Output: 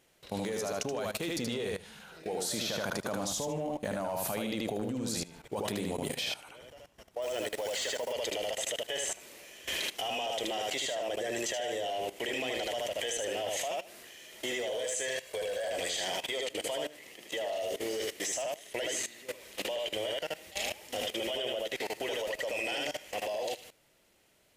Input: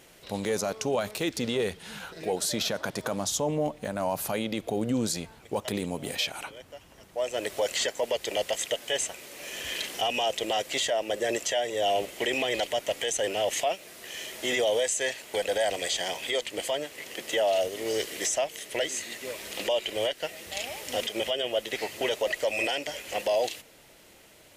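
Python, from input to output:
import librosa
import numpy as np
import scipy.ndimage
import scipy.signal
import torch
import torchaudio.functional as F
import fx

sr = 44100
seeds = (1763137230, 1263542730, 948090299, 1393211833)

y = fx.comb(x, sr, ms=1.8, depth=0.67, at=(15.07, 15.68))
y = fx.notch(y, sr, hz=1500.0, q=9.4, at=(16.91, 17.68))
y = fx.echo_feedback(y, sr, ms=77, feedback_pct=24, wet_db=-3.5)
y = np.clip(y, -10.0 ** (-18.5 / 20.0), 10.0 ** (-18.5 / 20.0))
y = fx.level_steps(y, sr, step_db=17)
y = fx.quant_float(y, sr, bits=2, at=(7.22, 8.13))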